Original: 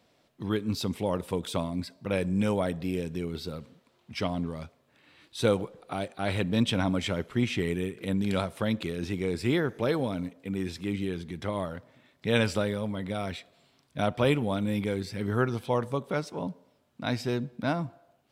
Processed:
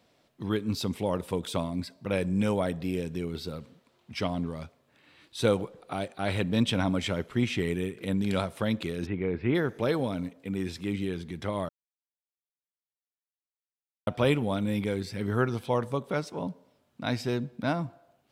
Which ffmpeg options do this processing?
ffmpeg -i in.wav -filter_complex "[0:a]asplit=3[link_01][link_02][link_03];[link_01]afade=type=out:start_time=9.05:duration=0.02[link_04];[link_02]lowpass=frequency=2500:width=0.5412,lowpass=frequency=2500:width=1.3066,afade=type=in:start_time=9.05:duration=0.02,afade=type=out:start_time=9.54:duration=0.02[link_05];[link_03]afade=type=in:start_time=9.54:duration=0.02[link_06];[link_04][link_05][link_06]amix=inputs=3:normalize=0,asplit=3[link_07][link_08][link_09];[link_07]atrim=end=11.69,asetpts=PTS-STARTPTS,afade=type=out:start_time=11.686:duration=0.004:curve=hsin[link_10];[link_08]atrim=start=11.69:end=14.07,asetpts=PTS-STARTPTS,volume=0[link_11];[link_09]atrim=start=14.07,asetpts=PTS-STARTPTS,afade=type=in:duration=0.004:curve=hsin[link_12];[link_10][link_11][link_12]concat=n=3:v=0:a=1" out.wav

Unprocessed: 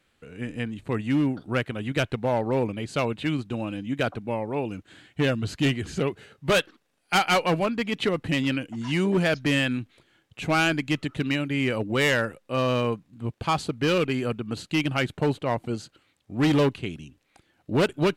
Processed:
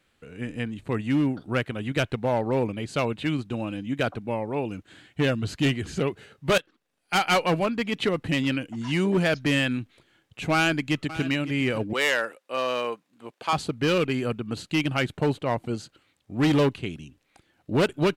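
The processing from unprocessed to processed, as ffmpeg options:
ffmpeg -i in.wav -filter_complex "[0:a]asplit=2[link_01][link_02];[link_02]afade=type=in:start_time=10.53:duration=0.01,afade=type=out:start_time=11.24:duration=0.01,aecho=0:1:560|1120:0.188365|0.0282547[link_03];[link_01][link_03]amix=inputs=2:normalize=0,asettb=1/sr,asplit=3[link_04][link_05][link_06];[link_04]atrim=end=11.934[link_07];[link_05]atrim=start=11.93:end=13.53,asetpts=PTS-STARTPTS,afade=type=in:duration=0.004:curve=qsin,afade=type=out:start_time=1.596:duration=0.004:curve=qsin,highpass=470[link_08];[link_06]atrim=start=13.526[link_09];[link_07][link_08]acrossfade=duration=0.004:curve1=hsin:curve2=qsin[link_10];[link_10][link_09]acrossfade=duration=0.004:curve1=qsin:curve2=hsin,asplit=2[link_11][link_12];[link_11]atrim=end=6.58,asetpts=PTS-STARTPTS,afade=type=out:start_time=6.576:duration=0.004:curve=hsin:silence=0.141254[link_13];[link_12]atrim=start=6.58,asetpts=PTS-STARTPTS,afade=type=in:duration=0.73:silence=0.141254[link_14];[link_13][link_14]concat=n=2:v=0:a=1" out.wav

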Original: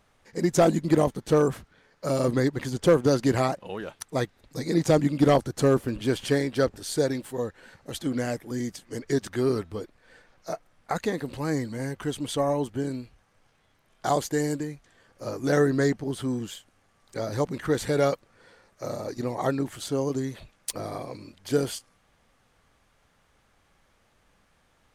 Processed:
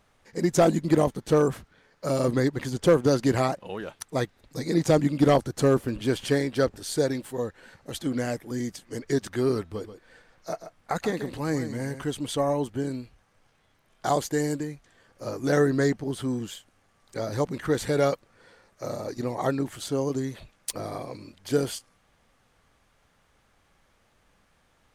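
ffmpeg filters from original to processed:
ffmpeg -i in.wav -filter_complex "[0:a]asettb=1/sr,asplit=3[link_01][link_02][link_03];[link_01]atrim=end=9.624[link_04];[link_02]atrim=start=9.62:end=12.02,asetpts=PTS-STARTPTS,afade=type=in:duration=0.004:curve=qsin,afade=type=out:start_time=2.396:duration=0.004:curve=qsin,aecho=1:1:134:0.282,atrim=end_sample=105840[link_05];[link_03]atrim=start=12.016[link_06];[link_04][link_05]acrossfade=duration=0.004:curve1=hsin:curve2=qsin[link_07];[link_07][link_06]acrossfade=duration=0.004:curve1=qsin:curve2=hsin" out.wav

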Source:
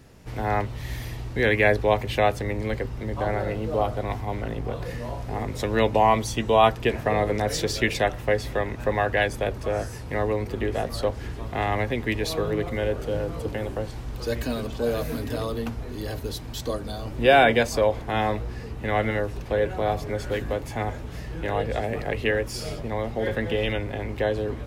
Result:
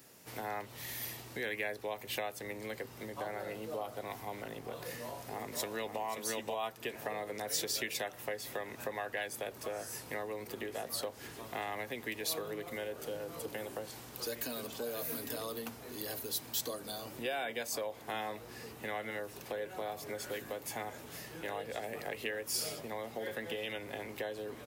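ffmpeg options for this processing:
ffmpeg -i in.wav -filter_complex "[0:a]asplit=2[link_01][link_02];[link_02]afade=type=in:start_time=4.99:duration=0.01,afade=type=out:start_time=6.01:duration=0.01,aecho=0:1:530|1060:0.891251|0.0891251[link_03];[link_01][link_03]amix=inputs=2:normalize=0,acompressor=threshold=-28dB:ratio=6,highpass=110,aemphasis=mode=production:type=bsi,volume=-6dB" out.wav

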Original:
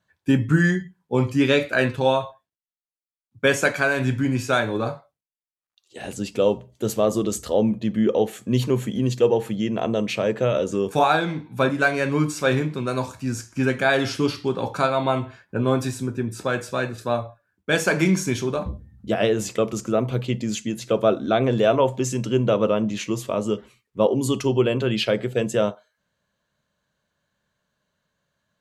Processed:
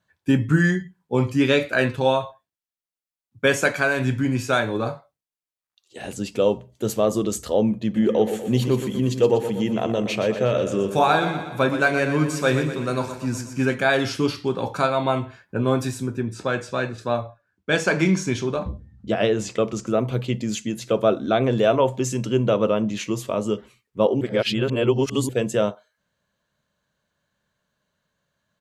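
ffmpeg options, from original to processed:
ffmpeg -i in.wav -filter_complex "[0:a]asplit=3[link_01][link_02][link_03];[link_01]afade=type=out:start_time=7.95:duration=0.02[link_04];[link_02]aecho=1:1:121|242|363|484|605|726:0.335|0.184|0.101|0.0557|0.0307|0.0169,afade=type=in:start_time=7.95:duration=0.02,afade=type=out:start_time=13.73:duration=0.02[link_05];[link_03]afade=type=in:start_time=13.73:duration=0.02[link_06];[link_04][link_05][link_06]amix=inputs=3:normalize=0,asettb=1/sr,asplit=3[link_07][link_08][link_09];[link_07]atrim=end=16.214[link_10];[link_08]atrim=start=16.21:end=19.87,asetpts=PTS-STARTPTS,afade=type=in:duration=0.004:curve=qsin,afade=type=out:start_time=3.656:duration=0.004:curve=qsin,lowpass=7100[link_11];[link_09]atrim=start=19.866[link_12];[link_10][link_11]acrossfade=duration=0.004:curve1=hsin:curve2=qsin[link_13];[link_13][link_12]acrossfade=duration=0.004:curve1=qsin:curve2=hsin,asplit=3[link_14][link_15][link_16];[link_14]atrim=end=24.212[link_17];[link_15]atrim=start=24.208:end=25.292,asetpts=PTS-STARTPTS,areverse[link_18];[link_16]atrim=start=25.288[link_19];[link_17][link_18]acrossfade=duration=0.004:curve1=hsin:curve2=hsin[link_20];[link_20][link_19]acrossfade=duration=0.004:curve1=hsin:curve2=hsin" out.wav

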